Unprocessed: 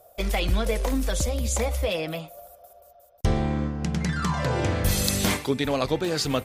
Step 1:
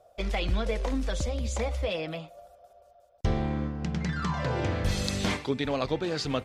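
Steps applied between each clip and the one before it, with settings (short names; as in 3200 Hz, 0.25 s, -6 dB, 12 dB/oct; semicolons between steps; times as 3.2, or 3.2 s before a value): LPF 5300 Hz 12 dB/oct; gain -4 dB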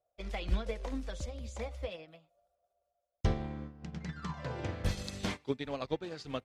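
upward expander 2.5:1, over -38 dBFS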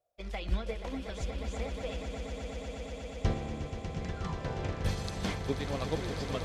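swelling echo 0.12 s, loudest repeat 8, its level -10.5 dB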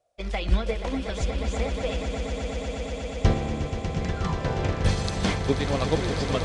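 downsampling 22050 Hz; gain +9 dB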